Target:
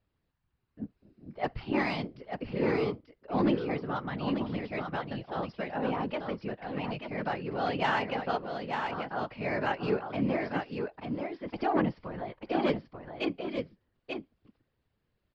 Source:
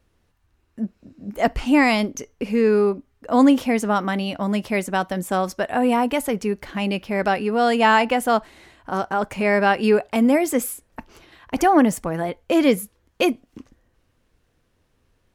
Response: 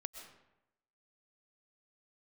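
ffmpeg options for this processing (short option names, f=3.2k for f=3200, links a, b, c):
-filter_complex "[0:a]aresample=11025,aresample=44100,aeval=exprs='0.631*(cos(1*acos(clip(val(0)/0.631,-1,1)))-cos(1*PI/2))+0.0631*(cos(3*acos(clip(val(0)/0.631,-1,1)))-cos(3*PI/2))':c=same,asplit=2[a][b];[b]aecho=0:1:888:0.531[c];[a][c]amix=inputs=2:normalize=0,afftfilt=real='hypot(re,im)*cos(2*PI*random(0))':imag='hypot(re,im)*sin(2*PI*random(1))':win_size=512:overlap=0.75,volume=-4.5dB"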